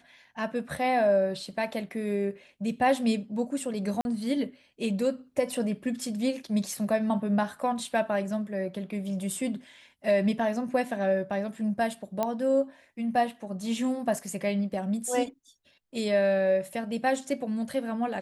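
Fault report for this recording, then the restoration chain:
0:04.01–0:04.05: drop-out 41 ms
0:12.23: click −14 dBFS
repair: click removal
repair the gap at 0:04.01, 41 ms

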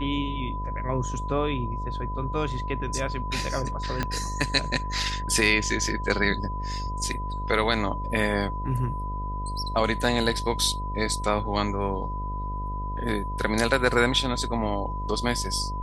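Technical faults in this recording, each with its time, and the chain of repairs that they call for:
mains buzz 50 Hz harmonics 13 −32 dBFS
whistle 1,000 Hz −33 dBFS
0:04.03: click −12 dBFS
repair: click removal
notch filter 1,000 Hz, Q 30
hum removal 50 Hz, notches 13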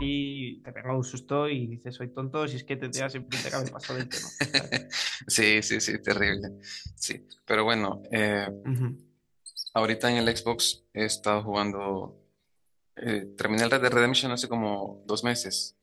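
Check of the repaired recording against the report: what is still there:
0:04.03: click

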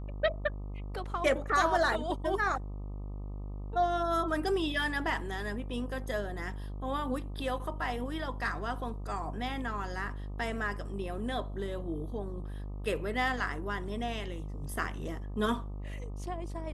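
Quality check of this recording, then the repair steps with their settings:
mains buzz 50 Hz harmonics 25 −39 dBFS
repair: hum removal 50 Hz, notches 25

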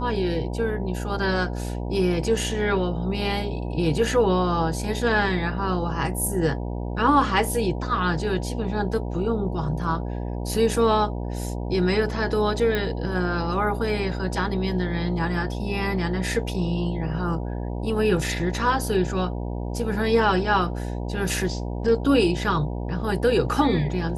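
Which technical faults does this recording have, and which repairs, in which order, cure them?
mains buzz 60 Hz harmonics 16 −29 dBFS
0:12.75: click −13 dBFS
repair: click removal
hum removal 60 Hz, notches 16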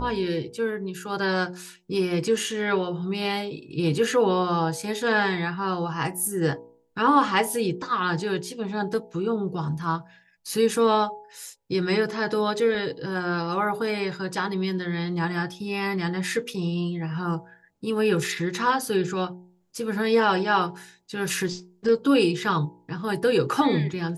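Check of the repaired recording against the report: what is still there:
none of them is left

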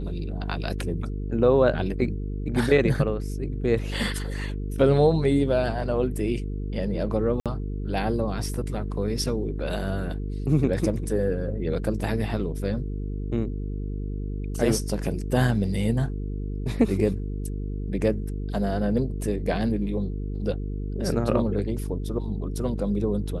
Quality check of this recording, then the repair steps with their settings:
mains buzz 50 Hz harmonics 9 −30 dBFS
0:07.40–0:07.46: drop-out 57 ms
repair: hum removal 50 Hz, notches 9
repair the gap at 0:07.40, 57 ms

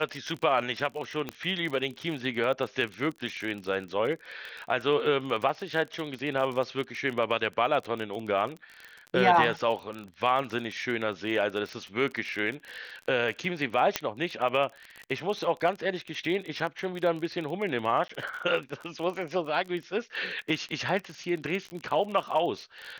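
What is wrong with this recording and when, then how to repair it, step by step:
surface crackle 33 per second −33 dBFS
0:01.29: click −18 dBFS
0:13.96: click −8 dBFS
0:18.08–0:18.09: drop-out 14 ms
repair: click removal
repair the gap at 0:18.08, 14 ms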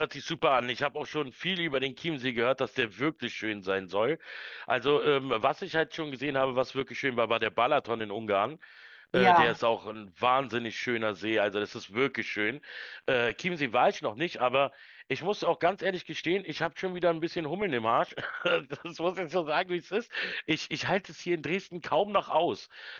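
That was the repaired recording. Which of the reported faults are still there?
none of them is left

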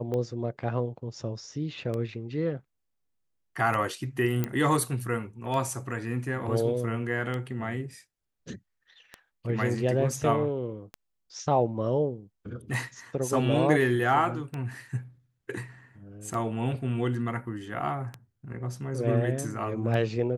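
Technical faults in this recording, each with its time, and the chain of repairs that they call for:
scratch tick 33 1/3 rpm −21 dBFS
0:04.44: click −14 dBFS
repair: click removal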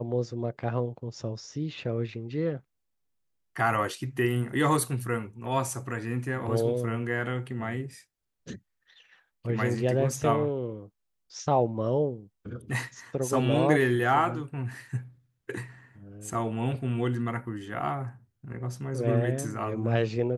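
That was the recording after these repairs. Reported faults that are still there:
none of them is left

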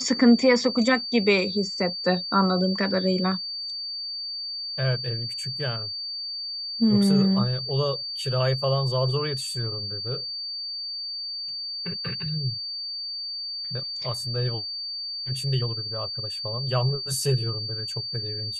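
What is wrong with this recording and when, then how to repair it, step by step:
whistle 4,600 Hz −30 dBFS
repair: notch filter 4,600 Hz, Q 30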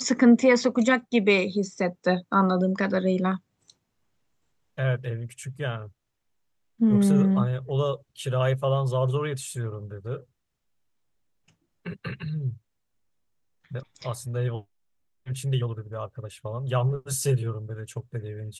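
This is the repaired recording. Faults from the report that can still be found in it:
none of them is left

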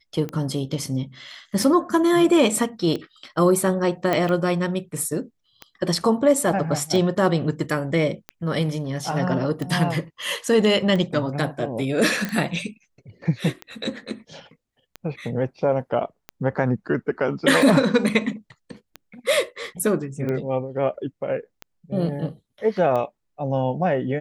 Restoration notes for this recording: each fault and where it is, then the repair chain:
scratch tick 45 rpm −17 dBFS
0:04.13: click −9 dBFS
0:12.25: click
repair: click removal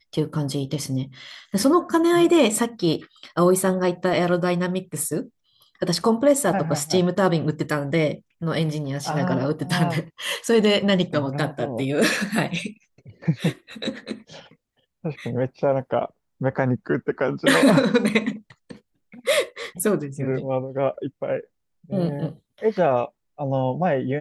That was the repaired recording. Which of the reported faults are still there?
none of them is left

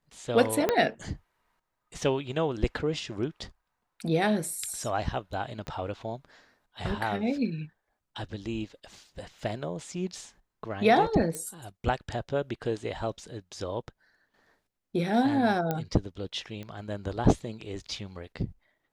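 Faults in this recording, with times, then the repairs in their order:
0:00.69: click −10 dBFS
0:05.67: click −24 dBFS
0:11.35: click −19 dBFS
0:15.71: click −15 dBFS
0:16.63: click −27 dBFS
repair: click removal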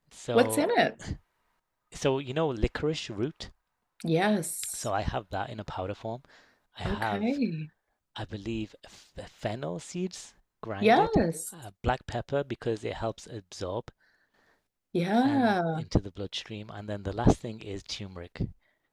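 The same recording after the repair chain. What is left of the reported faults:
0:00.69: click
0:05.67: click
0:15.71: click

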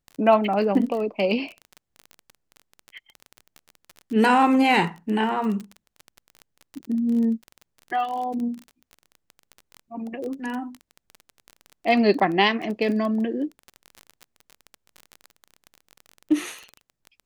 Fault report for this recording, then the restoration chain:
surface crackle 27 per second −29 dBFS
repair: click removal

